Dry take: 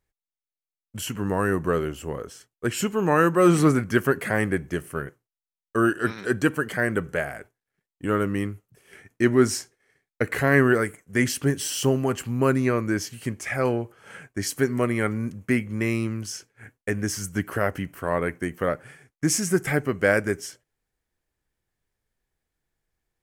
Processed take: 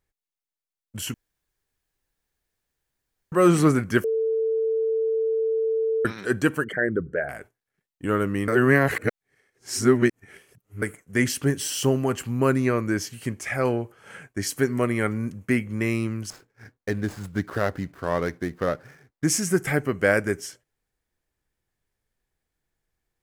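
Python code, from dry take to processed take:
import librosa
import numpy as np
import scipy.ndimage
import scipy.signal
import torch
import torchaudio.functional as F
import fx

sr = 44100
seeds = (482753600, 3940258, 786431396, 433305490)

y = fx.envelope_sharpen(x, sr, power=2.0, at=(6.64, 7.29))
y = fx.median_filter(y, sr, points=15, at=(16.3, 19.24))
y = fx.edit(y, sr, fx.room_tone_fill(start_s=1.14, length_s=2.18),
    fx.bleep(start_s=4.04, length_s=2.01, hz=446.0, db=-20.5),
    fx.reverse_span(start_s=8.48, length_s=2.34), tone=tone)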